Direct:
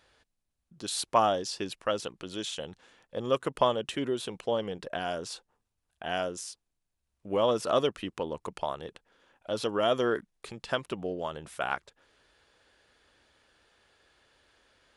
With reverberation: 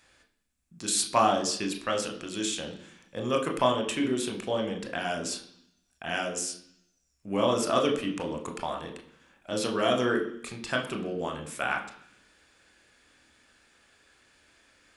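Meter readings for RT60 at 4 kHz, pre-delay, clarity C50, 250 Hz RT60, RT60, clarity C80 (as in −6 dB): 1.1 s, 22 ms, 9.5 dB, 0.95 s, 0.65 s, 13.0 dB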